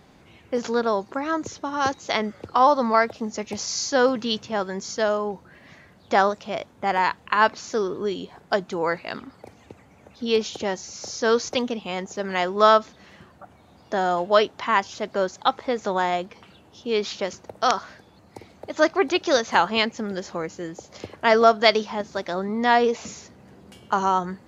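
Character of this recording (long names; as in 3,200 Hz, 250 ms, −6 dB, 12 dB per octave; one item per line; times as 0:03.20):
background noise floor −54 dBFS
spectral slope −3.5 dB per octave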